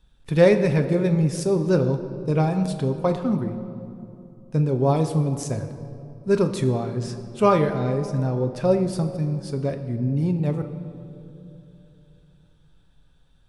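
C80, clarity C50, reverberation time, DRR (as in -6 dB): 10.5 dB, 9.5 dB, 2.9 s, 6.0 dB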